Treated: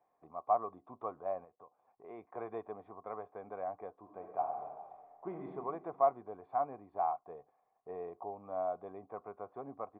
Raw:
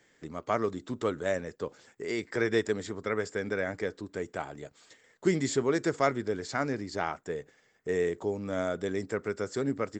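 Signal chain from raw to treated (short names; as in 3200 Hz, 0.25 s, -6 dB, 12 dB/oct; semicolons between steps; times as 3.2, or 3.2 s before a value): 1.44–2.04 compressor 5:1, threshold -45 dBFS, peak gain reduction 15 dB; vocal tract filter a; 3.94–5.48 reverb throw, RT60 1.7 s, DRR 2.5 dB; gain +7.5 dB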